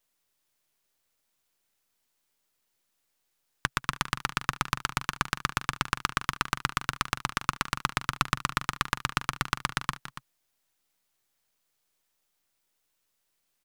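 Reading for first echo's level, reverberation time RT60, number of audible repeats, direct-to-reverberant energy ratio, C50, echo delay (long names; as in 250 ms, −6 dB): −19.0 dB, no reverb audible, 2, no reverb audible, no reverb audible, 192 ms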